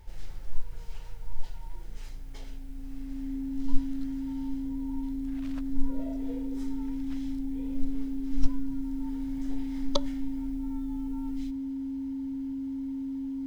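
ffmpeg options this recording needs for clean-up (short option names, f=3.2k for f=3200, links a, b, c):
-af "bandreject=f=270:w=30"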